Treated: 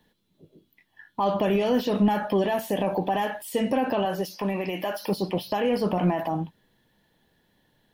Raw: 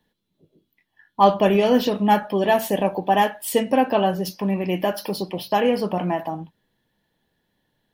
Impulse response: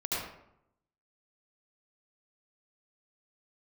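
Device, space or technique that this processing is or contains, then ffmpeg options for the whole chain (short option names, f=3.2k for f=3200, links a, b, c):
de-esser from a sidechain: -filter_complex "[0:a]asettb=1/sr,asplit=3[a][b][c];[a]atrim=end=4.054[d];[b]atrim=start=4.05:end=5.07,asetpts=PTS-STARTPTS,afade=t=in:d=0.004:c=qsin,afade=t=out:st=1.016:d=0.004:c=qsin,highpass=f=530:p=1[e];[c]atrim=start=5.066[f];[d][e]acrossfade=d=0.004:c1=hsin:c2=qsin[g];[g][f]acrossfade=d=0.004:c1=qsin:c2=hsin,asplit=2[h][i];[i]highpass=f=6.3k:p=1,apad=whole_len=350112[j];[h][j]sidechaincompress=threshold=-48dB:ratio=3:attack=1.8:release=26,volume=5dB"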